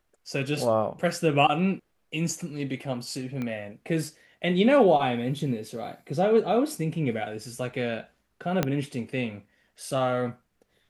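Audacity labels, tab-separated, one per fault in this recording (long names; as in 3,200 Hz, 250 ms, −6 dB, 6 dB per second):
3.420000	3.420000	click −21 dBFS
8.630000	8.630000	click −9 dBFS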